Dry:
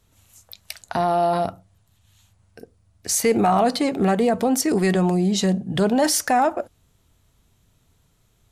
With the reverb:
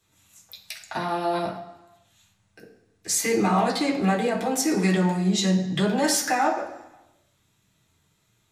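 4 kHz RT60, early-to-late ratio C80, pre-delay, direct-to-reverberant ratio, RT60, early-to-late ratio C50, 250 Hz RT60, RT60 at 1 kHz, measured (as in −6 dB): 1.0 s, 10.5 dB, 3 ms, −4.0 dB, 1.0 s, 7.5 dB, 0.95 s, 1.0 s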